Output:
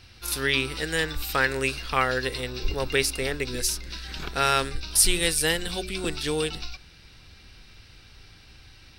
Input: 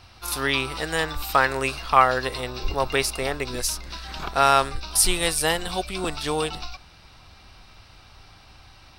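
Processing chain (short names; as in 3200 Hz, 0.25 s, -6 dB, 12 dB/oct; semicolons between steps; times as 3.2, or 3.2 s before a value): band shelf 870 Hz -10 dB 1.3 oct; de-hum 92.39 Hz, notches 4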